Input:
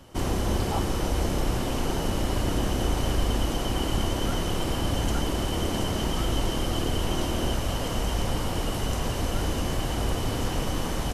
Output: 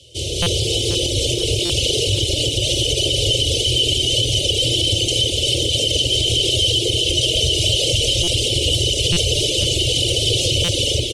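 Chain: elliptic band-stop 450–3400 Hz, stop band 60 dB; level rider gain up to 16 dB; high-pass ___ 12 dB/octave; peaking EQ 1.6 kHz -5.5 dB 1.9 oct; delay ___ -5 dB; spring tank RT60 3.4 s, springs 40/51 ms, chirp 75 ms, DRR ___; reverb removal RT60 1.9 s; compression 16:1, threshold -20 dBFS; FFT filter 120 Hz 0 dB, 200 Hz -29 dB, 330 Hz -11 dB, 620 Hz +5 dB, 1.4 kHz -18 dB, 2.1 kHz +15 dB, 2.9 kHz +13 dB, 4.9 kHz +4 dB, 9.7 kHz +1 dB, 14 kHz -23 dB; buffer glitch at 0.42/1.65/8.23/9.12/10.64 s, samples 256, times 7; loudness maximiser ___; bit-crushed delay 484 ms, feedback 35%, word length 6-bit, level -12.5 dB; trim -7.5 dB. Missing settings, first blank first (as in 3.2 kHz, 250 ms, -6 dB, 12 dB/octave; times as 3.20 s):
120 Hz, 252 ms, 2 dB, +16.5 dB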